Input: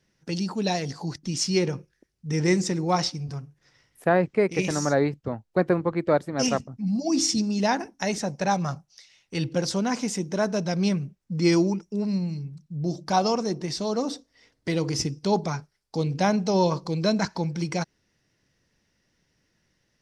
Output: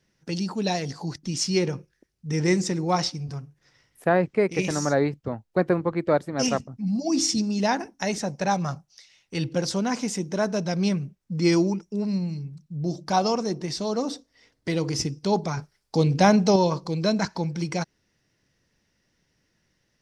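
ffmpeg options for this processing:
-filter_complex "[0:a]asettb=1/sr,asplit=3[a][b][c];[a]atrim=end=15.574[d];[b]atrim=start=15.57:end=16.56,asetpts=PTS-STARTPTS,afade=t=in:d=0.004:c=qsin,afade=t=out:st=0.986:d=0.004:c=qsin,acontrast=38[e];[c]atrim=start=16.556[f];[d][e]acrossfade=d=0.004:c1=hsin:c2=qsin[g];[g][f]acrossfade=d=0.004:c1=qsin:c2=hsin"

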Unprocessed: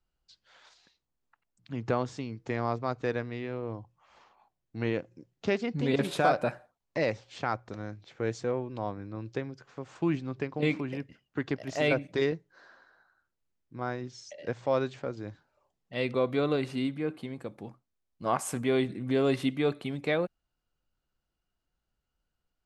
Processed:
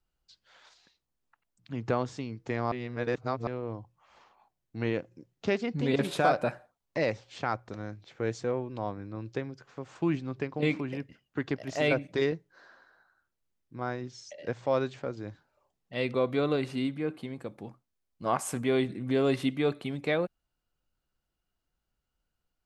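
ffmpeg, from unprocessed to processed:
-filter_complex "[0:a]asplit=3[a][b][c];[a]atrim=end=2.722[d];[b]atrim=start=2.718:end=3.472,asetpts=PTS-STARTPTS,areverse[e];[c]atrim=start=3.468[f];[d][e]acrossfade=d=0.004:c1=hsin:c2=hsin[g];[g][f]acrossfade=d=0.004:c1=hsin:c2=hsin"

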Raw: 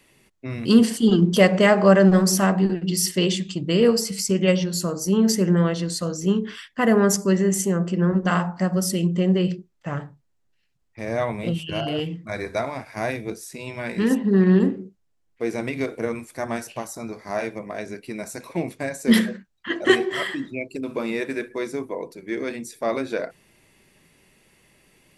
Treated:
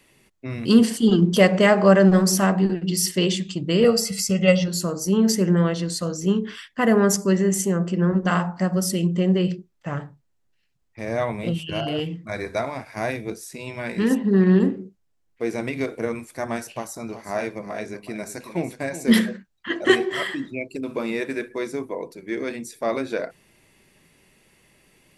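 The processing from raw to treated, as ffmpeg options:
-filter_complex "[0:a]asettb=1/sr,asplit=3[a][b][c];[a]atrim=end=3.844[d];[b]atrim=start=3.84:end=4.68,asetpts=PTS-STARTPTS,afade=t=in:d=0.004:c=qsin,afade=t=out:st=0.836:d=0.004:c=qsin,aecho=1:1:1.5:0.81,atrim=end_sample=37044[e];[c]atrim=start=4.676[f];[d][e]acrossfade=d=0.004:c1=hsin:c2=qsin[g];[g][f]acrossfade=d=0.004:c1=qsin:c2=hsin,asettb=1/sr,asplit=3[h][i][j];[h]atrim=end=16.724[k];[i]atrim=start=16.72:end=19.1,asetpts=PTS-STARTPTS,afade=t=in:d=0.004:c=qsin,afade=t=out:st=2.376:d=0.004:c=qsin,aecho=1:1:373:0.251,atrim=end_sample=104958[l];[j]atrim=start=19.096[m];[k][l]acrossfade=d=0.004:c1=hsin:c2=qsin[n];[n][m]acrossfade=d=0.004:c1=qsin:c2=hsin"

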